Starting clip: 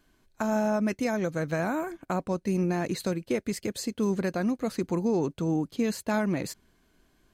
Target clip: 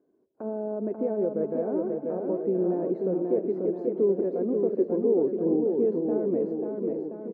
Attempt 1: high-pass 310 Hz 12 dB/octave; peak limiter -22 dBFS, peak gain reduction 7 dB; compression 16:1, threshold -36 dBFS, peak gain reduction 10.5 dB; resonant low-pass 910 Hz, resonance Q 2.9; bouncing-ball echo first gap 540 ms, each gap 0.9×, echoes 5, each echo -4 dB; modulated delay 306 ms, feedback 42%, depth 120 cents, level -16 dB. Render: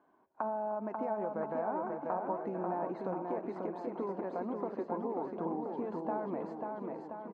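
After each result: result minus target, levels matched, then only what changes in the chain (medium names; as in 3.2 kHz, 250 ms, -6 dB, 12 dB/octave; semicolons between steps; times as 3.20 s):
1 kHz band +17.5 dB; compression: peak gain reduction +10.5 dB
change: resonant low-pass 440 Hz, resonance Q 2.9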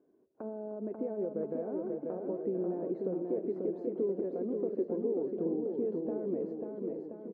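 compression: peak gain reduction +10.5 dB
remove: compression 16:1, threshold -36 dBFS, peak gain reduction 10.5 dB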